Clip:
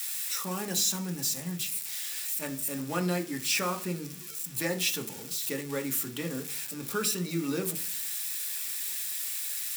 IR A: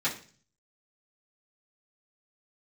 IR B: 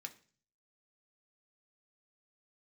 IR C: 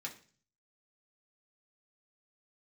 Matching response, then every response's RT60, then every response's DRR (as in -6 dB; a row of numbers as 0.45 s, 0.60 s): B; 0.40 s, 0.40 s, 0.40 s; -10.5 dB, 4.0 dB, -2.5 dB